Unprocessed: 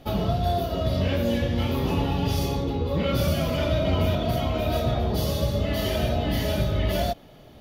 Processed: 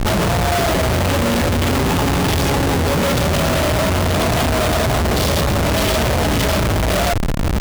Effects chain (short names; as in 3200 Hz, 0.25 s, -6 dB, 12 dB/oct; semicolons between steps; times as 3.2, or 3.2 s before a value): in parallel at +1.5 dB: negative-ratio compressor -28 dBFS, ratio -0.5; on the sum: Schmitt trigger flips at -33.5 dBFS; gain +4 dB